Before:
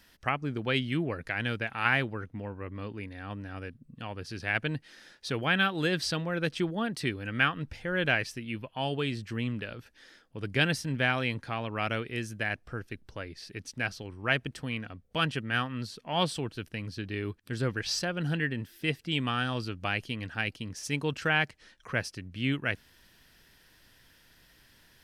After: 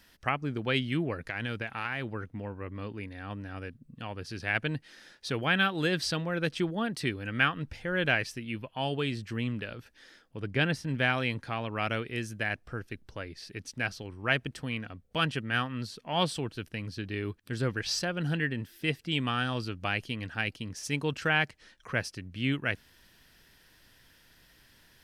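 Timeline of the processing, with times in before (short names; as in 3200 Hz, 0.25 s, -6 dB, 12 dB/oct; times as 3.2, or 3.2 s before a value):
1.26–2.12 compressor, threshold -29 dBFS
10.4–10.89 high shelf 3900 Hz -10 dB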